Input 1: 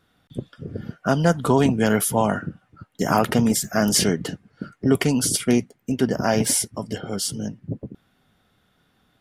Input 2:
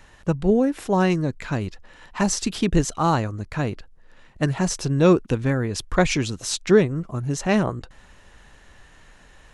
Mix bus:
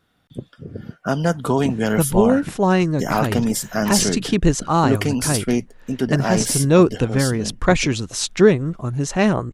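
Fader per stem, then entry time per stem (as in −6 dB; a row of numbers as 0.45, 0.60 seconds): −1.0, +3.0 decibels; 0.00, 1.70 seconds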